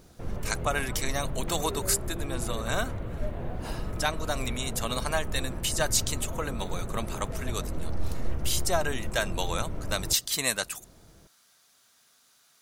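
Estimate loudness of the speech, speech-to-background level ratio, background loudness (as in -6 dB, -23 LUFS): -30.5 LUFS, 6.5 dB, -37.0 LUFS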